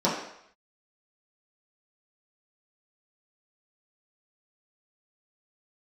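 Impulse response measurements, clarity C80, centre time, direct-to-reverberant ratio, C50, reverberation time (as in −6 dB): 6.5 dB, 45 ms, −8.5 dB, 4.0 dB, 0.70 s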